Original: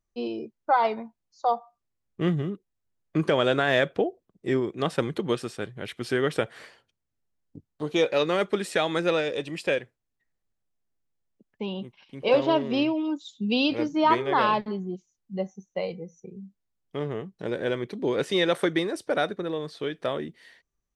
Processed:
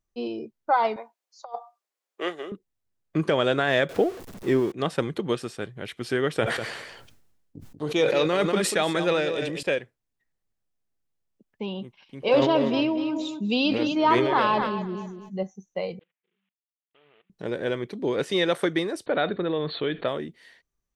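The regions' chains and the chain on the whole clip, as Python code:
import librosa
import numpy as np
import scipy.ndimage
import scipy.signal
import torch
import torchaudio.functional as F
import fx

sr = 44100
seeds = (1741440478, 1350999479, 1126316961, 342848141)

y = fx.chain(x, sr, fx.highpass(hz=450.0, slope=24),
    fx.over_compress(threshold_db=-30.0, ratio=-0.5), at=(0.96, 2.52))
y = fx.chain(y, sr, fx.zero_step(step_db=-36.5),
    fx.peak_eq(hz=390.0, db=2.5, octaves=2.5), at=(3.89, 4.72))
y = fx.chain(y, sr, fx.echo_single(ms=191, db=-9.5),
    fx.sustainer(db_per_s=44.0), at=(6.39, 9.63))
y = fx.chain(y, sr, fx.echo_feedback(ms=240, feedback_pct=20, wet_db=-11),
    fx.sustainer(db_per_s=39.0), at=(12.3, 15.43))
y = fx.chain(y, sr, fx.cvsd(bps=16000),
    fx.differentiator(),
    fx.level_steps(step_db=20), at=(15.99, 17.3))
y = fx.chain(y, sr, fx.brickwall_lowpass(high_hz=4500.0),
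    fx.env_flatten(amount_pct=50), at=(19.06, 20.08))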